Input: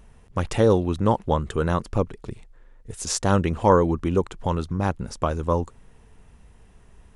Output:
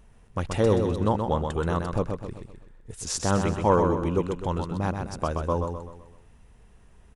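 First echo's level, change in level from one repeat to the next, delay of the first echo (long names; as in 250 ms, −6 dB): −5.5 dB, −7.5 dB, 127 ms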